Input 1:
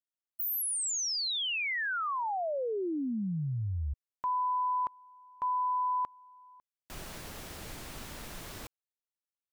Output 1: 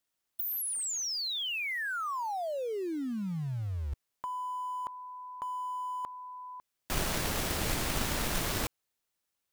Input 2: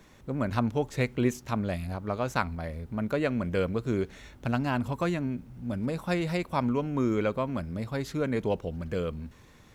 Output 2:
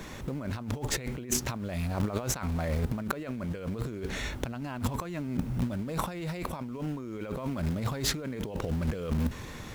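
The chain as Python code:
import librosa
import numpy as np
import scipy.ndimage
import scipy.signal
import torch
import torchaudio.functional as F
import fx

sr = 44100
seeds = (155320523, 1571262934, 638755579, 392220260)

p1 = fx.quant_dither(x, sr, seeds[0], bits=6, dither='none')
p2 = x + (p1 * 10.0 ** (-11.5 / 20.0))
p3 = fx.over_compress(p2, sr, threshold_db=-38.0, ratio=-1.0)
y = p3 * 10.0 ** (4.5 / 20.0)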